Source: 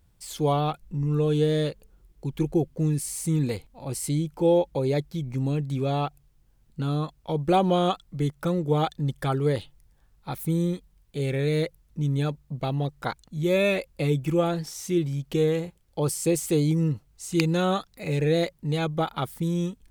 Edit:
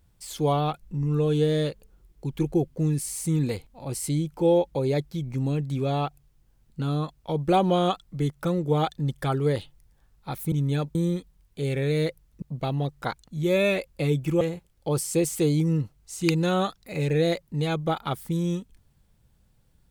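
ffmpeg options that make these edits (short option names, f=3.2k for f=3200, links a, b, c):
-filter_complex "[0:a]asplit=5[a][b][c][d][e];[a]atrim=end=10.522[f];[b]atrim=start=11.988:end=12.422[g];[c]atrim=start=10.518:end=11.992[h];[d]atrim=start=12.418:end=14.412[i];[e]atrim=start=15.518[j];[f][g]acrossfade=d=0.004:c1=hsin:c2=hsin[k];[k][h]acrossfade=d=0.004:c1=hsin:c2=hsin[l];[l][i]acrossfade=d=0.004:c1=hsin:c2=hsin[m];[m][j]acrossfade=d=0.004:c1=hsin:c2=hsin"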